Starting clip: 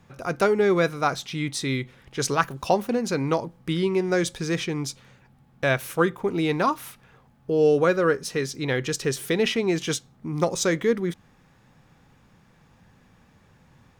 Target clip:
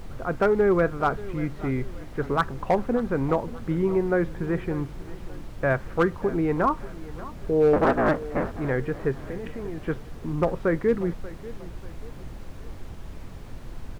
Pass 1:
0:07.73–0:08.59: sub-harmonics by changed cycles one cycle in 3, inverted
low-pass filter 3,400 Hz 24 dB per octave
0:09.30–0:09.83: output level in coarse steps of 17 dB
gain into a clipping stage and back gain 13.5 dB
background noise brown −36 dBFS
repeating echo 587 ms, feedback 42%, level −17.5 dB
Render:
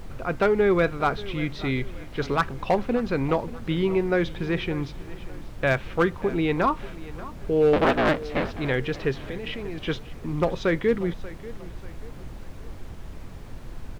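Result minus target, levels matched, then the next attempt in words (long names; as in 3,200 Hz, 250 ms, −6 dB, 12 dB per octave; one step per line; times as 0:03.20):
4,000 Hz band +10.5 dB
0:07.73–0:08.59: sub-harmonics by changed cycles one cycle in 3, inverted
low-pass filter 1,700 Hz 24 dB per octave
0:09.30–0:09.83: output level in coarse steps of 17 dB
gain into a clipping stage and back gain 13.5 dB
background noise brown −36 dBFS
repeating echo 587 ms, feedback 42%, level −17.5 dB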